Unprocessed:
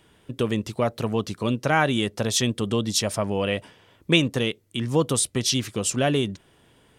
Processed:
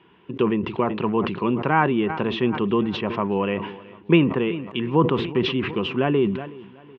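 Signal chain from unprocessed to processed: low-pass that closes with the level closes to 1.8 kHz, closed at -20 dBFS; cabinet simulation 100–3000 Hz, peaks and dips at 110 Hz -6 dB, 180 Hz +6 dB, 370 Hz +9 dB, 600 Hz -7 dB, 1 kHz +10 dB, 2.7 kHz +7 dB; feedback delay 372 ms, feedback 51%, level -21 dB; decay stretcher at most 70 dB/s

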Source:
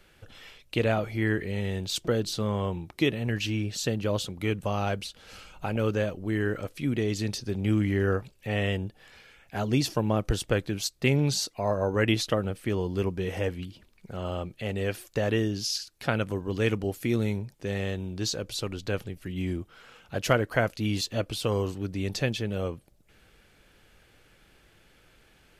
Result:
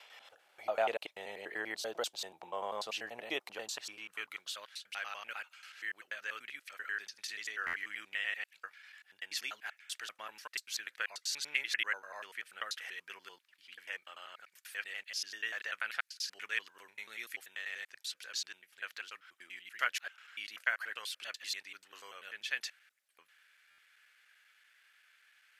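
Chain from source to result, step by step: slices played last to first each 97 ms, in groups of 6; high-pass sweep 730 Hz -> 1.7 kHz, 3.37–4.63 s; buffer glitch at 7.66/23.70 s, samples 512, times 6; trim -7.5 dB

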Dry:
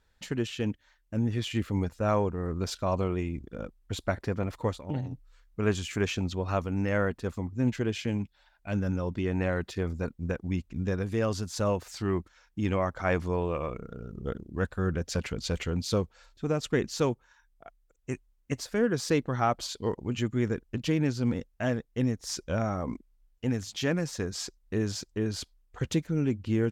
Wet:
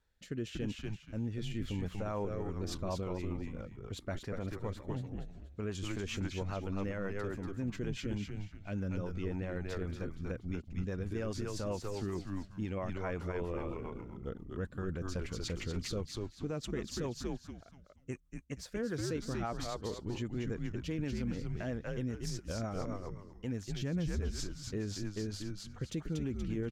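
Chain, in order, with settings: 23.74–24.20 s: peaking EQ 92 Hz +15 dB 2.8 oct; frequency-shifting echo 238 ms, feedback 31%, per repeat -99 Hz, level -4 dB; rotary cabinet horn 0.85 Hz, later 7.5 Hz, at 2.10 s; peak limiter -22 dBFS, peak gain reduction 11.5 dB; trim -5.5 dB

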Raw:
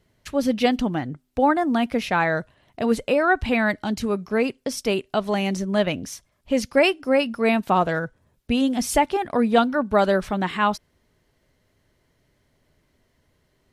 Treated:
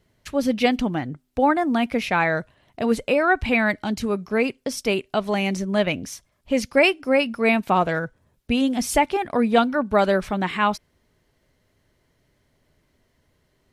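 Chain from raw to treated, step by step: dynamic bell 2.3 kHz, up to +6 dB, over -45 dBFS, Q 4.7

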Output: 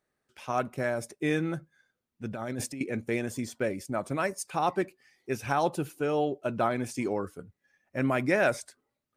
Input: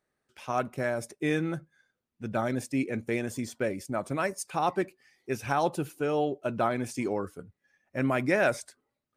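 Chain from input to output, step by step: 2.33–2.81 s: compressor with a negative ratio -35 dBFS, ratio -1

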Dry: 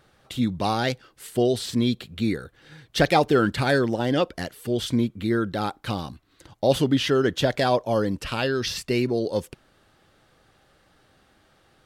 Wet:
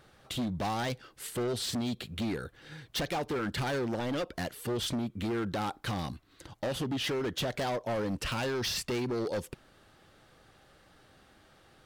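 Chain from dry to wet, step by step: compression 12:1, threshold -24 dBFS, peak gain reduction 11.5 dB; hard clipper -29 dBFS, distortion -8 dB

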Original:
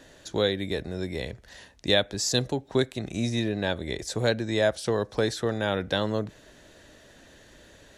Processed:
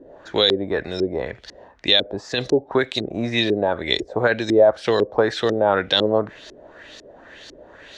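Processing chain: tone controls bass -9 dB, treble +9 dB; peak limiter -15.5 dBFS, peak gain reduction 9.5 dB; LFO low-pass saw up 2 Hz 340–5100 Hz; trim +8 dB

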